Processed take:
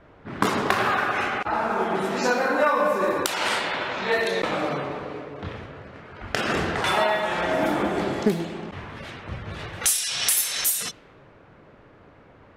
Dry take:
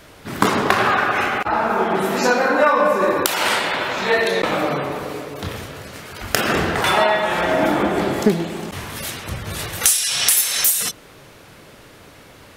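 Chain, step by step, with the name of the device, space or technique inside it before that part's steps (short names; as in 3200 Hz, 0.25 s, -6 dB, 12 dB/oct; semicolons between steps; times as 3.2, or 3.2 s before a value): cassette deck with a dynamic noise filter (white noise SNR 31 dB; low-pass opened by the level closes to 1400 Hz, open at -13 dBFS); gain -5.5 dB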